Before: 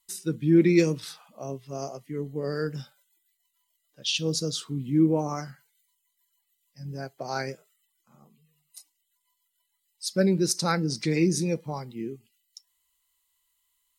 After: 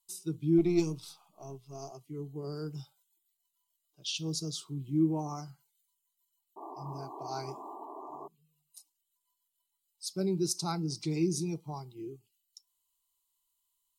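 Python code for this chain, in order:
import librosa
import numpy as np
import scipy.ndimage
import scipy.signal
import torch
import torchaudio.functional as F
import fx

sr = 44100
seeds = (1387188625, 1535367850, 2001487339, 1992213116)

y = fx.halfwave_gain(x, sr, db=-3.0, at=(0.58, 1.91))
y = fx.spec_paint(y, sr, seeds[0], shape='noise', start_s=6.56, length_s=1.72, low_hz=210.0, high_hz=1200.0, level_db=-37.0)
y = fx.fixed_phaser(y, sr, hz=350.0, stages=8)
y = F.gain(torch.from_numpy(y), -5.5).numpy()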